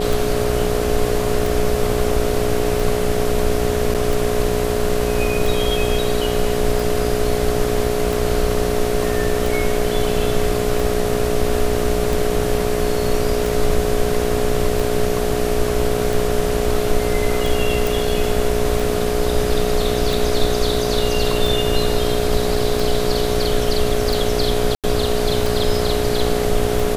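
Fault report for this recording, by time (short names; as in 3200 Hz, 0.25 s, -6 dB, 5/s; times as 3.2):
buzz 60 Hz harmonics 12 -24 dBFS
tick 45 rpm
tone 420 Hz -23 dBFS
3.94–3.95 gap 7.1 ms
17.87 pop
24.75–24.84 gap 87 ms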